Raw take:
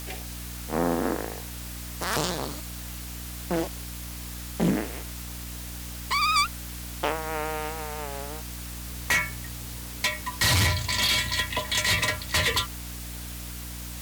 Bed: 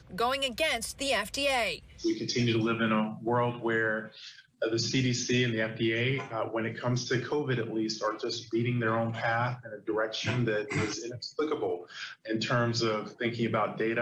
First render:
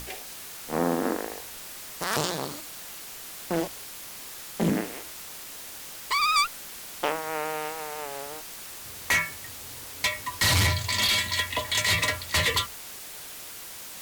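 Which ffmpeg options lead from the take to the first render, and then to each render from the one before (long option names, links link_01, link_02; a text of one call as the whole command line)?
ffmpeg -i in.wav -af "bandreject=frequency=60:width_type=h:width=6,bandreject=frequency=120:width_type=h:width=6,bandreject=frequency=180:width_type=h:width=6,bandreject=frequency=240:width_type=h:width=6,bandreject=frequency=300:width_type=h:width=6" out.wav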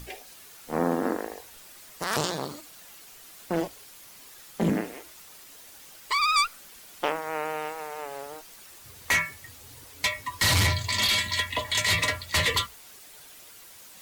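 ffmpeg -i in.wav -af "afftdn=noise_reduction=9:noise_floor=-41" out.wav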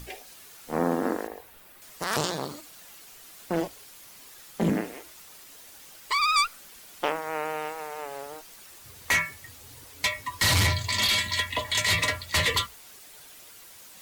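ffmpeg -i in.wav -filter_complex "[0:a]asettb=1/sr,asplit=3[link_01][link_02][link_03];[link_01]atrim=end=1.274[link_04];[link_02]atrim=start=1.27:end=1.82,asetpts=PTS-STARTPTS,afade=type=in:duration=0.004:curve=qsin,afade=type=out:start_time=0.546:duration=0.004:curve=qsin,equalizer=frequency=6300:width=0.65:gain=-10.5[link_05];[link_03]atrim=start=1.816[link_06];[link_04][link_05]acrossfade=duration=0.004:curve1=hsin:curve2=qsin[link_07];[link_07][link_06]acrossfade=duration=0.004:curve1=qsin:curve2=hsin" out.wav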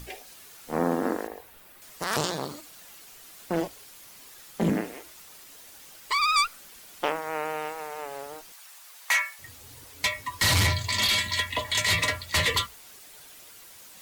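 ffmpeg -i in.wav -filter_complex "[0:a]asettb=1/sr,asplit=3[link_01][link_02][link_03];[link_01]atrim=end=8.524[link_04];[link_02]atrim=start=8.52:end=9.39,asetpts=PTS-STARTPTS,afade=type=in:duration=0.004:curve=qsin,afade=type=out:start_time=0.866:duration=0.004:curve=qsin,highpass=frequency=690:width=0.5412,highpass=frequency=690:width=1.3066[link_05];[link_03]atrim=start=9.386[link_06];[link_04][link_05]acrossfade=duration=0.004:curve1=hsin:curve2=qsin[link_07];[link_07][link_06]acrossfade=duration=0.004:curve1=qsin:curve2=hsin" out.wav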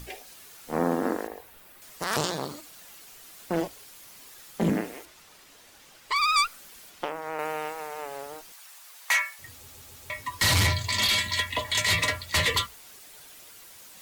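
ffmpeg -i in.wav -filter_complex "[0:a]asettb=1/sr,asplit=3[link_01][link_02][link_03];[link_01]atrim=end=5.054[link_04];[link_02]atrim=start=5.05:end=6.16,asetpts=PTS-STARTPTS,afade=type=in:duration=0.004:curve=qsin,afade=type=out:start_time=1.106:duration=0.004:curve=qsin,highshelf=frequency=7500:gain=-11[link_05];[link_03]atrim=start=6.156[link_06];[link_04][link_05]acrossfade=duration=0.004:curve1=hsin:curve2=qsin[link_07];[link_07][link_06]acrossfade=duration=0.004:curve1=qsin:curve2=hsin,asettb=1/sr,asplit=3[link_08][link_09][link_10];[link_08]atrim=end=6.894[link_11];[link_09]atrim=start=6.89:end=7.39,asetpts=PTS-STARTPTS,afade=type=in:duration=0.004:curve=qsin,afade=type=out:start_time=0.496:duration=0.004:curve=qsin,acrossover=split=1400|6200[link_12][link_13][link_14];[link_12]acompressor=threshold=-29dB:ratio=4[link_15];[link_13]acompressor=threshold=-40dB:ratio=4[link_16];[link_14]acompressor=threshold=-56dB:ratio=4[link_17];[link_15][link_16][link_17]amix=inputs=3:normalize=0[link_18];[link_10]atrim=start=7.386[link_19];[link_11][link_18]acrossfade=duration=0.004:curve1=hsin:curve2=qsin[link_20];[link_20][link_19]acrossfade=duration=0.004:curve1=qsin:curve2=hsin,asplit=5[link_21][link_22][link_23][link_24][link_25];[link_21]atrim=end=9.682[link_26];[link_22]atrim=start=9.538:end=9.682[link_27];[link_23]atrim=start=9.538:end=9.682[link_28];[link_24]atrim=start=9.538:end=9.682[link_29];[link_25]atrim=start=10.098[link_30];[link_26][link_27]acrossfade=duration=0.004:curve1=hsin:curve2=hsin[link_31];[link_31][link_28]acrossfade=duration=0.004:curve1=hsin:curve2=hsin[link_32];[link_32][link_29]acrossfade=duration=0.004:curve1=hsin:curve2=hsin[link_33];[link_33][link_30]acrossfade=duration=0.004:curve1=hsin:curve2=hsin" out.wav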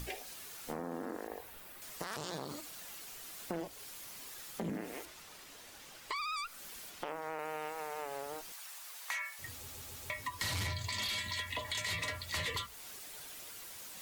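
ffmpeg -i in.wav -af "alimiter=limit=-22dB:level=0:latency=1:release=74,acompressor=threshold=-38dB:ratio=3" out.wav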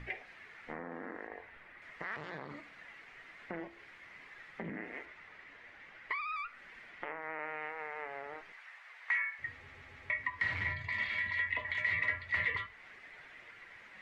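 ffmpeg -i in.wav -af "flanger=delay=8.1:depth=7.5:regen=83:speed=0.15:shape=triangular,lowpass=frequency=2000:width_type=q:width=5.2" out.wav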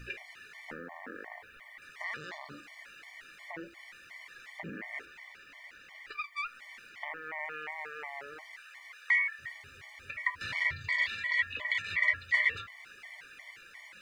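ffmpeg -i in.wav -af "crystalizer=i=6:c=0,afftfilt=real='re*gt(sin(2*PI*2.8*pts/sr)*(1-2*mod(floor(b*sr/1024/590),2)),0)':imag='im*gt(sin(2*PI*2.8*pts/sr)*(1-2*mod(floor(b*sr/1024/590),2)),0)':win_size=1024:overlap=0.75" out.wav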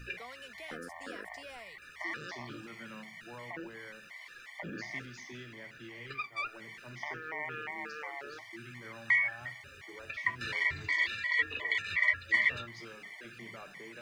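ffmpeg -i in.wav -i bed.wav -filter_complex "[1:a]volume=-21dB[link_01];[0:a][link_01]amix=inputs=2:normalize=0" out.wav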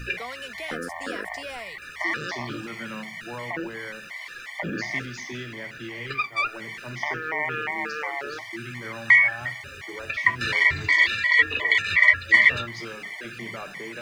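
ffmpeg -i in.wav -af "volume=11.5dB" out.wav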